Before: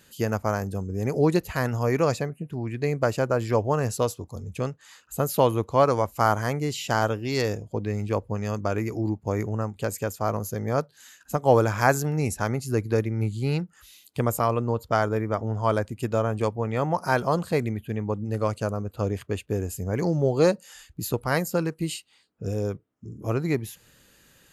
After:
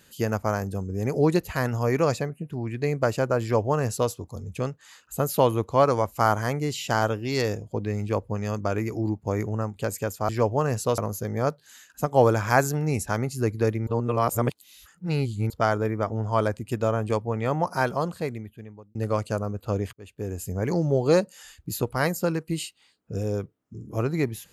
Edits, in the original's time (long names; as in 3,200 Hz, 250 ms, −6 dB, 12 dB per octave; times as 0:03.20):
0:03.42–0:04.11: duplicate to 0:10.29
0:13.18–0:14.81: reverse
0:16.95–0:18.26: fade out
0:19.24–0:19.79: fade in